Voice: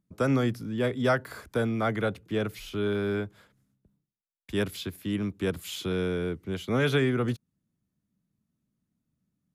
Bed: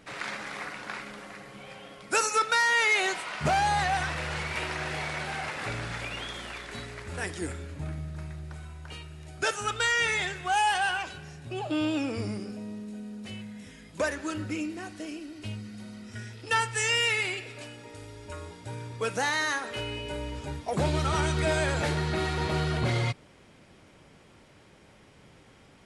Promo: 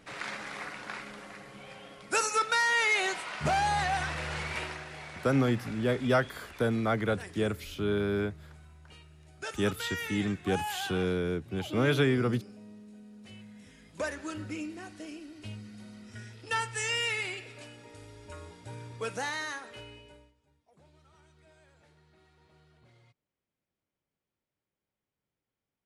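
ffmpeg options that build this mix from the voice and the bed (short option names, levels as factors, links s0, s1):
-filter_complex "[0:a]adelay=5050,volume=0.891[s0];[1:a]volume=1.5,afade=t=out:st=4.56:d=0.29:silence=0.375837,afade=t=in:st=13.1:d=1.01:silence=0.501187,afade=t=out:st=19.07:d=1.27:silence=0.0316228[s1];[s0][s1]amix=inputs=2:normalize=0"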